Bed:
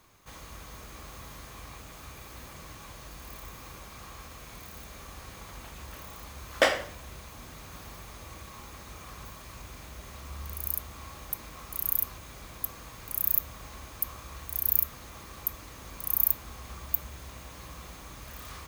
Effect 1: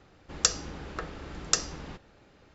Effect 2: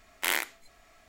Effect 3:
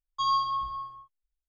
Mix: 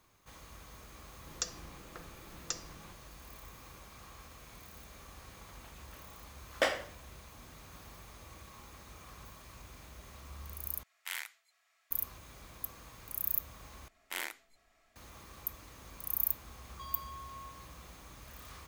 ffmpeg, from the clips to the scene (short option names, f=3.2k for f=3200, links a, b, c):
-filter_complex "[2:a]asplit=2[a][b];[0:a]volume=-7dB[c];[1:a]aecho=1:1:5.8:0.4[d];[a]highpass=1.2k[e];[3:a]acompressor=threshold=-38dB:ratio=6:attack=3.2:release=140:knee=1:detection=peak[f];[c]asplit=3[g][h][i];[g]atrim=end=10.834[j];[e]atrim=end=1.08,asetpts=PTS-STARTPTS,volume=-11.5dB[k];[h]atrim=start=11.906:end=13.884[l];[b]atrim=end=1.08,asetpts=PTS-STARTPTS,volume=-11dB[m];[i]atrim=start=14.956[n];[d]atrim=end=2.54,asetpts=PTS-STARTPTS,volume=-13.5dB,afade=t=in:d=0.004:c=hsin,afade=t=out:st=2.536:d=0.004:c=hsin,adelay=970[o];[f]atrim=end=1.48,asetpts=PTS-STARTPTS,volume=-8dB,afade=t=in:d=0.004:c=hsin,afade=t=out:st=1.476:d=0.004:c=hsin,adelay=16610[p];[j][k]acrossfade=d=0.004:c1=hsin:c2=hsin[q];[q][l]acrossfade=d=0.004:c1=hsin:c2=hsin[r];[r][m]acrossfade=d=0.004:c1=hsin:c2=hsin[s];[s][n]acrossfade=d=0.004:c1=hsin:c2=hsin[t];[t][o][p]amix=inputs=3:normalize=0"